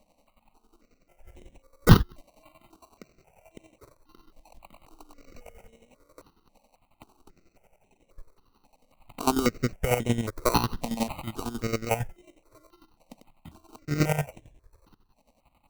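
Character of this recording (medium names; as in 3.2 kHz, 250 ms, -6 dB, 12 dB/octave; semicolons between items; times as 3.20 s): aliases and images of a low sample rate 1.7 kHz, jitter 0%; chopped level 11 Hz, depth 65%, duty 35%; notches that jump at a steady rate 3.7 Hz 380–4700 Hz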